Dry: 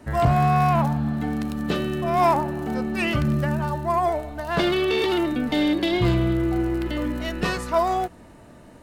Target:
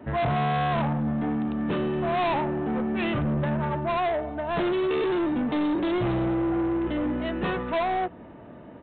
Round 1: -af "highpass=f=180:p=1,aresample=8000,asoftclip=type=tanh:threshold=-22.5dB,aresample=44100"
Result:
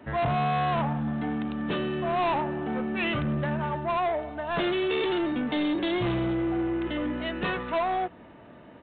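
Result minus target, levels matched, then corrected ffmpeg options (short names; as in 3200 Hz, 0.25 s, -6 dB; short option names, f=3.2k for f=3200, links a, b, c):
2000 Hz band +2.5 dB
-af "highpass=f=180:p=1,tiltshelf=f=1.5k:g=5.5,aresample=8000,asoftclip=type=tanh:threshold=-22.5dB,aresample=44100"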